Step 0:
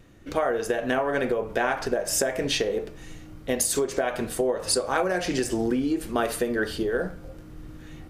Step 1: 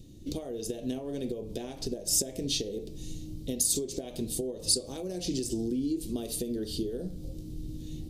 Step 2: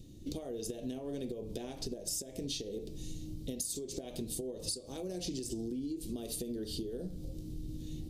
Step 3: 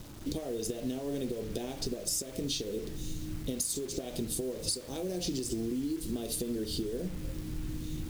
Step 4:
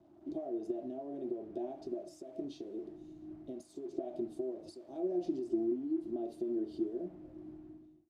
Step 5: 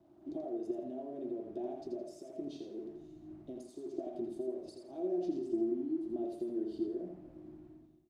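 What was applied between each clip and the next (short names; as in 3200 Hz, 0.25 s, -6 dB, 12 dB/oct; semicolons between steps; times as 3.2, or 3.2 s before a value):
tilt shelf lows +4 dB, about 900 Hz; compressor 2.5:1, threshold -31 dBFS, peak gain reduction 9 dB; EQ curve 320 Hz 0 dB, 1500 Hz -25 dB, 3800 Hz +8 dB
compressor 6:1, threshold -33 dBFS, peak gain reduction 12 dB; gain -2 dB
bit-crush 9-bit; gain +4.5 dB
ending faded out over 0.55 s; double band-pass 480 Hz, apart 0.89 oct; three-band expander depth 40%; gain +4.5 dB
feedback echo 83 ms, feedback 31%, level -5.5 dB; gain -1.5 dB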